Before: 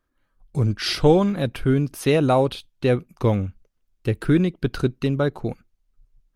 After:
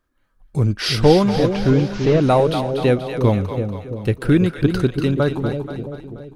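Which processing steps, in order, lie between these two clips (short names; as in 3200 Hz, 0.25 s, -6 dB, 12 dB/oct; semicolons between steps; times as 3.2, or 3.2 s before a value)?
1.32–2.23 delta modulation 32 kbps, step -35.5 dBFS; on a send: split-band echo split 580 Hz, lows 0.334 s, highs 0.24 s, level -7 dB; on the sum: gain +3 dB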